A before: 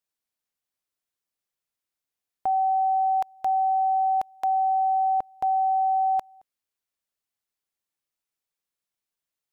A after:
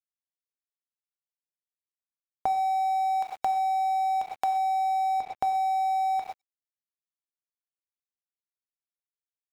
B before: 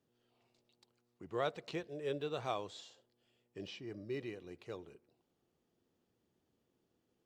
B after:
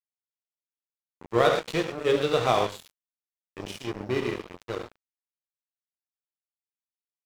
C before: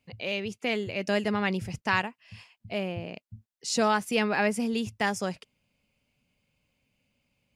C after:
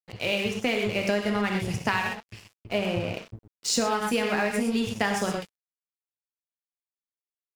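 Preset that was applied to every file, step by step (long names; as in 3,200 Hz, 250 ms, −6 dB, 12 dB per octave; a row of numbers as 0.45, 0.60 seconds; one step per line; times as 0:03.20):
reverb whose tail is shaped and stops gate 150 ms flat, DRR 1 dB
downward compressor 16 to 1, threshold −27 dBFS
dead-zone distortion −45 dBFS
loudness normalisation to −27 LKFS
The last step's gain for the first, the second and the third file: +4.0, +15.5, +7.0 decibels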